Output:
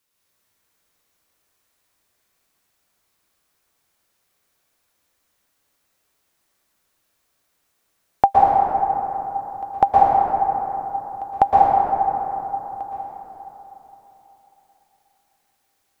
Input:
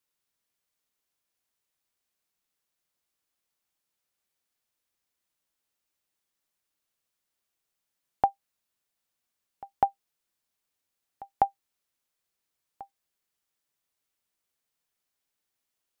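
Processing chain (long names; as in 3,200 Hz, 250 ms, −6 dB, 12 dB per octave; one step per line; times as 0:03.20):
dense smooth reverb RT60 3.7 s, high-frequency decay 0.35×, pre-delay 105 ms, DRR −6.5 dB
level +8.5 dB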